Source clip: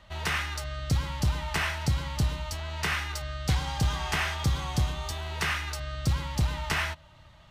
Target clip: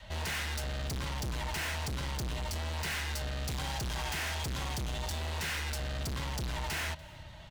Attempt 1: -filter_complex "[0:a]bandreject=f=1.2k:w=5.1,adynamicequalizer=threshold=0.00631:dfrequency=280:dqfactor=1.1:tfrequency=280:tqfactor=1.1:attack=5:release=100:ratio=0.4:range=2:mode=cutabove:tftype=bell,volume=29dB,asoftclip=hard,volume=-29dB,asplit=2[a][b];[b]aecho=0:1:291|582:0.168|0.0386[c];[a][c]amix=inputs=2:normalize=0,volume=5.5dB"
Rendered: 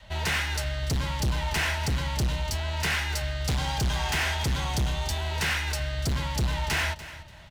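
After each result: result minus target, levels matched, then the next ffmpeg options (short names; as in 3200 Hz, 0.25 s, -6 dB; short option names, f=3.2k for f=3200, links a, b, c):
echo-to-direct +8 dB; overloaded stage: distortion -5 dB
-filter_complex "[0:a]bandreject=f=1.2k:w=5.1,adynamicequalizer=threshold=0.00631:dfrequency=280:dqfactor=1.1:tfrequency=280:tqfactor=1.1:attack=5:release=100:ratio=0.4:range=2:mode=cutabove:tftype=bell,volume=29dB,asoftclip=hard,volume=-29dB,asplit=2[a][b];[b]aecho=0:1:291|582:0.0668|0.0154[c];[a][c]amix=inputs=2:normalize=0,volume=5.5dB"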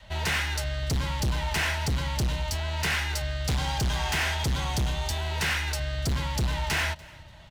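overloaded stage: distortion -5 dB
-filter_complex "[0:a]bandreject=f=1.2k:w=5.1,adynamicequalizer=threshold=0.00631:dfrequency=280:dqfactor=1.1:tfrequency=280:tqfactor=1.1:attack=5:release=100:ratio=0.4:range=2:mode=cutabove:tftype=bell,volume=39.5dB,asoftclip=hard,volume=-39.5dB,asplit=2[a][b];[b]aecho=0:1:291|582:0.0668|0.0154[c];[a][c]amix=inputs=2:normalize=0,volume=5.5dB"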